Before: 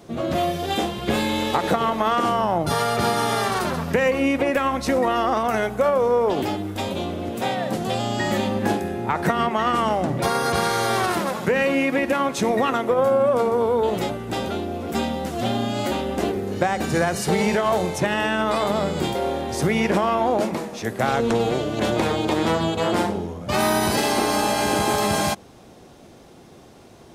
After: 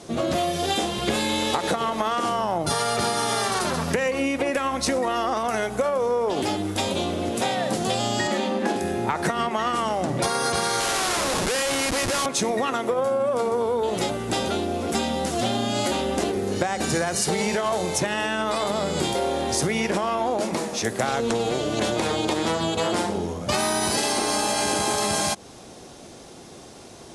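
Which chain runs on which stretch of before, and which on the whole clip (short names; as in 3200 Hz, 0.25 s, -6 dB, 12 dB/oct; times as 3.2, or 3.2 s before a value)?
8.27–8.76 HPF 190 Hz 24 dB/oct + high shelf 6300 Hz -11.5 dB
10.8–12.26 weighting filter A + Schmitt trigger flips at -30.5 dBFS
whole clip: elliptic low-pass 11000 Hz, stop band 50 dB; tone controls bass -3 dB, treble +7 dB; compressor, threshold -25 dBFS; gain +4.5 dB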